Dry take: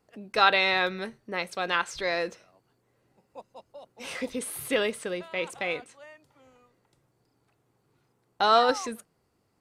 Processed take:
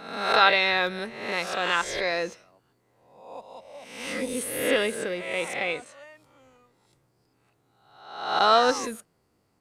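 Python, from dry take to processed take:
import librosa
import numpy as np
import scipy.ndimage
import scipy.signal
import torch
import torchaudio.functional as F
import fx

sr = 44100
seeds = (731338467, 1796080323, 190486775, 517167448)

y = fx.spec_swells(x, sr, rise_s=0.81)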